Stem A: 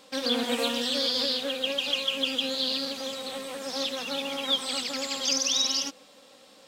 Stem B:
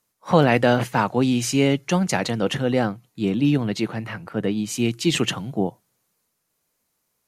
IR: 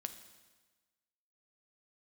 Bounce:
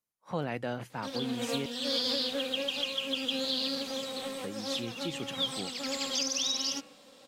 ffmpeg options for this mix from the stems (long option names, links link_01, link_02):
-filter_complex "[0:a]lowshelf=frequency=280:gain=5.5,bandreject=frequency=74.15:width_type=h:width=4,bandreject=frequency=148.3:width_type=h:width=4,bandreject=frequency=222.45:width_type=h:width=4,bandreject=frequency=296.6:width_type=h:width=4,bandreject=frequency=370.75:width_type=h:width=4,bandreject=frequency=444.9:width_type=h:width=4,bandreject=frequency=519.05:width_type=h:width=4,bandreject=frequency=593.2:width_type=h:width=4,bandreject=frequency=667.35:width_type=h:width=4,bandreject=frequency=741.5:width_type=h:width=4,bandreject=frequency=815.65:width_type=h:width=4,bandreject=frequency=889.8:width_type=h:width=4,bandreject=frequency=963.95:width_type=h:width=4,bandreject=frequency=1038.1:width_type=h:width=4,bandreject=frequency=1112.25:width_type=h:width=4,bandreject=frequency=1186.4:width_type=h:width=4,bandreject=frequency=1260.55:width_type=h:width=4,bandreject=frequency=1334.7:width_type=h:width=4,bandreject=frequency=1408.85:width_type=h:width=4,bandreject=frequency=1483:width_type=h:width=4,bandreject=frequency=1557.15:width_type=h:width=4,bandreject=frequency=1631.3:width_type=h:width=4,bandreject=frequency=1705.45:width_type=h:width=4,bandreject=frequency=1779.6:width_type=h:width=4,bandreject=frequency=1853.75:width_type=h:width=4,bandreject=frequency=1927.9:width_type=h:width=4,bandreject=frequency=2002.05:width_type=h:width=4,bandreject=frequency=2076.2:width_type=h:width=4,bandreject=frequency=2150.35:width_type=h:width=4,bandreject=frequency=2224.5:width_type=h:width=4,bandreject=frequency=2298.65:width_type=h:width=4,bandreject=frequency=2372.8:width_type=h:width=4,bandreject=frequency=2446.95:width_type=h:width=4,bandreject=frequency=2521.1:width_type=h:width=4,bandreject=frequency=2595.25:width_type=h:width=4,bandreject=frequency=2669.4:width_type=h:width=4,bandreject=frequency=2743.55:width_type=h:width=4,bandreject=frequency=2817.7:width_type=h:width=4,bandreject=frequency=2891.85:width_type=h:width=4,adelay=900,volume=-2.5dB[link_01];[1:a]volume=-17.5dB,asplit=3[link_02][link_03][link_04];[link_02]atrim=end=1.66,asetpts=PTS-STARTPTS,afade=type=out:start_time=1.656:duration=0.004:curve=hsin[link_05];[link_03]atrim=start=1.66:end=4.41,asetpts=PTS-STARTPTS,volume=0[link_06];[link_04]atrim=start=4.41,asetpts=PTS-STARTPTS,afade=type=in:duration=0.004:curve=hsin[link_07];[link_05][link_06][link_07]concat=n=3:v=0:a=1,asplit=2[link_08][link_09];[link_09]apad=whole_len=334186[link_10];[link_01][link_10]sidechaincompress=threshold=-42dB:ratio=8:attack=48:release=417[link_11];[link_11][link_08]amix=inputs=2:normalize=0,alimiter=limit=-20dB:level=0:latency=1:release=345"